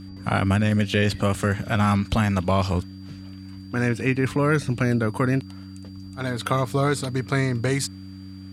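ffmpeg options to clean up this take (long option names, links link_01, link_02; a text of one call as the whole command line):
ffmpeg -i in.wav -af "bandreject=frequency=95.6:width_type=h:width=4,bandreject=frequency=191.2:width_type=h:width=4,bandreject=frequency=286.8:width_type=h:width=4,bandreject=frequency=4700:width=30" out.wav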